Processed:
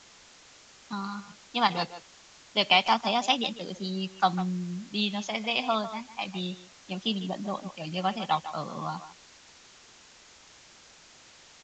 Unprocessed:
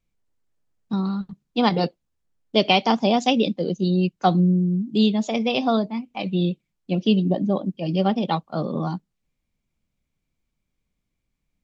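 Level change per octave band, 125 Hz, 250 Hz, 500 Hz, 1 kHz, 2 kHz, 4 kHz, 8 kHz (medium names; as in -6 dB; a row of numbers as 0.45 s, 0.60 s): -13.0 dB, -13.0 dB, -10.5 dB, -2.5 dB, -0.5 dB, -1.0 dB, no reading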